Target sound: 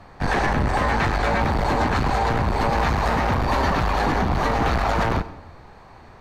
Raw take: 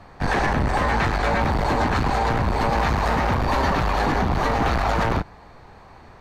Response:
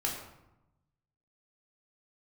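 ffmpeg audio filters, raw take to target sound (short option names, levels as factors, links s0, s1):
-filter_complex "[0:a]asplit=2[s0][s1];[1:a]atrim=start_sample=2205,adelay=94[s2];[s1][s2]afir=irnorm=-1:irlink=0,volume=0.0891[s3];[s0][s3]amix=inputs=2:normalize=0"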